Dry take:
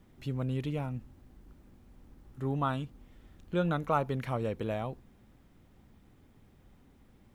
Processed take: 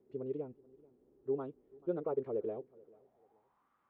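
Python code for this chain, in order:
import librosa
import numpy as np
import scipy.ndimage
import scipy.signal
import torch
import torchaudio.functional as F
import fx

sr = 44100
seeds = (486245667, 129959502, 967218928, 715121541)

y = fx.filter_sweep_bandpass(x, sr, from_hz=410.0, to_hz=1200.0, start_s=5.0, end_s=6.99, q=6.2)
y = fx.echo_feedback(y, sr, ms=822, feedback_pct=30, wet_db=-24)
y = fx.stretch_vocoder(y, sr, factor=0.53)
y = y * 10.0 ** (7.0 / 20.0)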